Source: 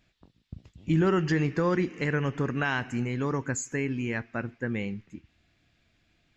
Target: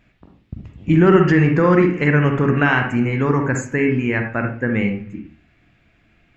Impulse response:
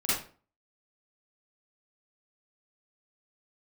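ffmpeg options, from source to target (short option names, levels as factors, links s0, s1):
-filter_complex "[0:a]highshelf=f=3200:t=q:w=1.5:g=-6.5,asplit=2[s0][s1];[1:a]atrim=start_sample=2205,lowpass=2500[s2];[s1][s2]afir=irnorm=-1:irlink=0,volume=0.299[s3];[s0][s3]amix=inputs=2:normalize=0,volume=2.51"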